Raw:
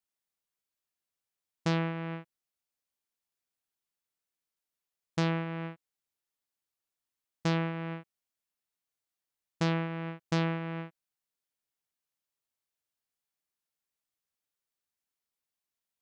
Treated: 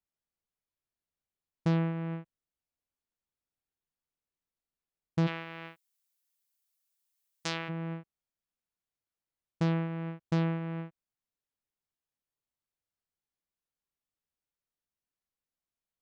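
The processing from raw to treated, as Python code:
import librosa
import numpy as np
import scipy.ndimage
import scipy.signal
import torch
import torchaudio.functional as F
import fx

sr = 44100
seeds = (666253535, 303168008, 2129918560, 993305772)

y = fx.tilt_eq(x, sr, slope=fx.steps((0.0, -2.5), (5.26, 3.5), (7.68, -2.0)))
y = y * librosa.db_to_amplitude(-3.5)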